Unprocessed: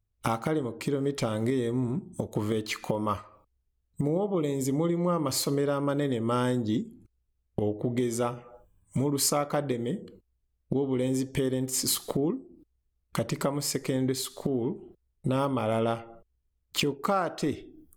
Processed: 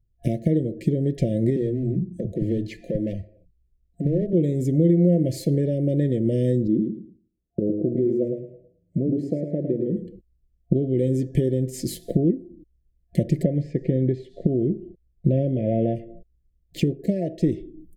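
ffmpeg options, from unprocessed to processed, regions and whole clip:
ffmpeg -i in.wav -filter_complex "[0:a]asettb=1/sr,asplit=3[link_01][link_02][link_03];[link_01]atrim=end=1.564[link_04];[link_02]atrim=start=1.56:end=4.33,asetpts=PTS-STARTPTS,afade=type=in:duration=0.004:curve=qsin,afade=type=out:start_time=2.766:duration=0.004:curve=qsin,highshelf=frequency=7800:gain=-11.5,asoftclip=type=hard:threshold=-24.5dB,acrossover=split=180[link_05][link_06];[link_05]adelay=50[link_07];[link_07][link_06]amix=inputs=2:normalize=0,atrim=end_sample=122157[link_08];[link_03]atrim=start=4.326[link_09];[link_04][link_08]acrossfade=duration=0.004:curve1=hsin:curve2=qsin[link_10];[link_10][link_09]acrossfade=duration=0.004:curve1=qsin:curve2=hsin,asettb=1/sr,asplit=3[link_11][link_12][link_13];[link_11]atrim=end=6.674[link_14];[link_12]atrim=start=6.67:end=9.97,asetpts=PTS-STARTPTS,afade=type=in:duration=0.004:curve=qsin,afade=type=out:start_time=3.296:duration=0.004:curve=qsin,bandpass=frequency=350:width_type=q:width=0.94,aecho=1:1:108|216|324:0.501|0.125|0.0313,atrim=end_sample=145530[link_15];[link_13]atrim=start=9.966[link_16];[link_14][link_15]acrossfade=duration=0.004:curve1=hsin:curve2=qsin[link_17];[link_17][link_16]acrossfade=duration=0.004:curve1=qsin:curve2=hsin,asettb=1/sr,asplit=3[link_18][link_19][link_20];[link_18]atrim=end=13.434[link_21];[link_19]atrim=start=13.43:end=15.96,asetpts=PTS-STARTPTS,afade=type=in:duration=0.004:curve=qsin,afade=type=out:start_time=2.526:duration=0.004:curve=qsin,lowpass=4000,acrossover=split=2500[link_22][link_23];[link_23]acompressor=threshold=-52dB:ratio=4:attack=1:release=60[link_24];[link_22][link_24]amix=inputs=2:normalize=0[link_25];[link_20]atrim=start=15.956[link_26];[link_21][link_25]acrossfade=duration=0.004:curve1=hsin:curve2=qsin[link_27];[link_27][link_26]acrossfade=duration=0.004:curve1=qsin:curve2=hsin,afftfilt=real='re*(1-between(b*sr/4096,690,1700))':imag='im*(1-between(b*sr/4096,690,1700))':win_size=4096:overlap=0.75,tiltshelf=frequency=730:gain=10,aecho=1:1:5.8:0.41" out.wav

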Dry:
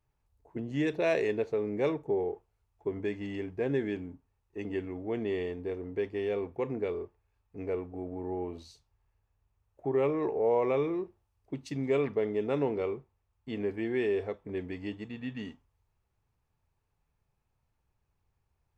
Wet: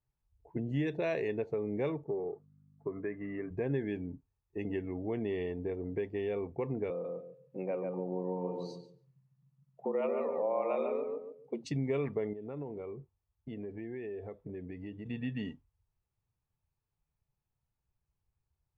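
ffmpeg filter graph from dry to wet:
ffmpeg -i in.wav -filter_complex "[0:a]asettb=1/sr,asplit=3[link_01][link_02][link_03];[link_01]atrim=end=2.044[link_04];[link_02]atrim=start=2.04:end=3.51,asetpts=PTS-STARTPTS,afade=type=in:duration=0.004:curve=qsin,afade=type=out:start_time=1.466:duration=0.004:curve=qsin,aeval=exprs='val(0)+0.00224*(sin(2*PI*50*n/s)+sin(2*PI*2*50*n/s)/2+sin(2*PI*3*50*n/s)/3+sin(2*PI*4*50*n/s)/4+sin(2*PI*5*50*n/s)/5)':channel_layout=same,highpass=180,equalizer=frequency=220:width_type=q:width=4:gain=-8,equalizer=frequency=340:width_type=q:width=4:gain=-4,equalizer=frequency=490:width_type=q:width=4:gain=-4,equalizer=frequency=830:width_type=q:width=4:gain=-9,equalizer=frequency=1200:width_type=q:width=4:gain=8,lowpass=frequency=2000:width=0.5412,lowpass=frequency=2000:width=1.3066[link_05];[link_03]atrim=start=3.506[link_06];[link_04][link_05]acrossfade=duration=0.004:curve1=hsin:curve2=qsin[link_07];[link_07][link_06]acrossfade=duration=0.004:curve1=qsin:curve2=hsin,asettb=1/sr,asplit=3[link_08][link_09][link_10];[link_08]atrim=end=6.904[link_11];[link_09]atrim=start=6.9:end=11.64,asetpts=PTS-STARTPTS,afade=type=in:duration=0.004:curve=qsin,afade=type=out:start_time=4.736:duration=0.004:curve=qsin,afreqshift=91,asplit=2[link_12][link_13];[link_13]adelay=143,lowpass=frequency=2900:poles=1,volume=-4dB,asplit=2[link_14][link_15];[link_15]adelay=143,lowpass=frequency=2900:poles=1,volume=0.28,asplit=2[link_16][link_17];[link_17]adelay=143,lowpass=frequency=2900:poles=1,volume=0.28,asplit=2[link_18][link_19];[link_19]adelay=143,lowpass=frequency=2900:poles=1,volume=0.28[link_20];[link_12][link_14][link_16][link_18][link_20]amix=inputs=5:normalize=0,atrim=end_sample=209034[link_21];[link_10]atrim=start=11.636[link_22];[link_11][link_21]acrossfade=duration=0.004:curve1=hsin:curve2=qsin[link_23];[link_23][link_22]acrossfade=duration=0.004:curve1=qsin:curve2=hsin,asettb=1/sr,asplit=3[link_24][link_25][link_26];[link_24]atrim=end=12.334[link_27];[link_25]atrim=start=12.33:end=15.06,asetpts=PTS-STARTPTS,afade=type=in:duration=0.004:curve=qsin,afade=type=out:start_time=2.726:duration=0.004:curve=qsin,highshelf=frequency=4000:gain=-7,acompressor=threshold=-45dB:ratio=3:attack=3.2:release=140:knee=1:detection=peak[link_28];[link_26]atrim=start=15.056[link_29];[link_27][link_28]acrossfade=duration=0.004:curve1=hsin:curve2=qsin[link_30];[link_30][link_29]acrossfade=duration=0.004:curve1=qsin:curve2=hsin,acompressor=threshold=-38dB:ratio=2,afftdn=noise_reduction=13:noise_floor=-56,equalizer=frequency=140:width=1.5:gain=6,volume=2dB" out.wav

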